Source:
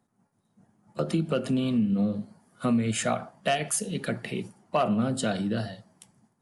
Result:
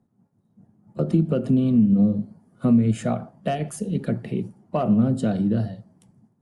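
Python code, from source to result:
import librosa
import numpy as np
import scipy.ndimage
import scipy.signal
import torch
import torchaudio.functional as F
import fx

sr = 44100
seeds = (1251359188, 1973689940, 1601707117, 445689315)

y = fx.cheby_harmonics(x, sr, harmonics=(7,), levels_db=(-39,), full_scale_db=-13.5)
y = fx.tilt_shelf(y, sr, db=9.5, hz=680.0)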